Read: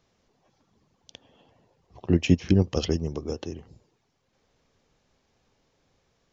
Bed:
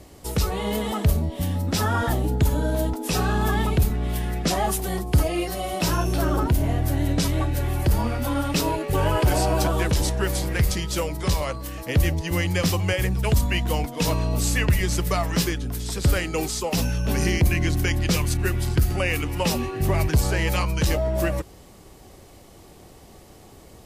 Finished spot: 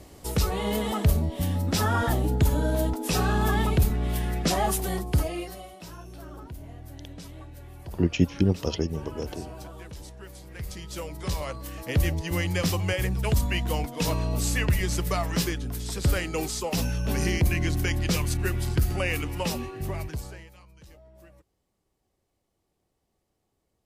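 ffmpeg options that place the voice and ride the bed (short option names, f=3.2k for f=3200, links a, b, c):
-filter_complex "[0:a]adelay=5900,volume=-2dB[a];[1:a]volume=15dB,afade=t=out:st=4.85:d=0.91:silence=0.11885,afade=t=in:st=10.45:d=1.42:silence=0.149624,afade=t=out:st=19.15:d=1.35:silence=0.0501187[b];[a][b]amix=inputs=2:normalize=0"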